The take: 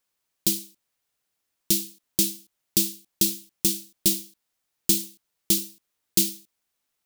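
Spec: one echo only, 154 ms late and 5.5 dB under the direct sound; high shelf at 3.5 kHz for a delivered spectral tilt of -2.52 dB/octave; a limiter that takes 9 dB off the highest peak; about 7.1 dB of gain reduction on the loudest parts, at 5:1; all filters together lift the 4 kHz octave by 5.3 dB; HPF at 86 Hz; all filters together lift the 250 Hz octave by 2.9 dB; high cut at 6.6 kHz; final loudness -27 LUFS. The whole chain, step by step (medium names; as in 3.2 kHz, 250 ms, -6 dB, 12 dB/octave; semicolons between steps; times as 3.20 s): high-pass 86 Hz; low-pass 6.6 kHz; peaking EQ 250 Hz +4.5 dB; treble shelf 3.5 kHz +6 dB; peaking EQ 4 kHz +3 dB; compression 5:1, threshold -25 dBFS; peak limiter -16 dBFS; delay 154 ms -5.5 dB; trim +7.5 dB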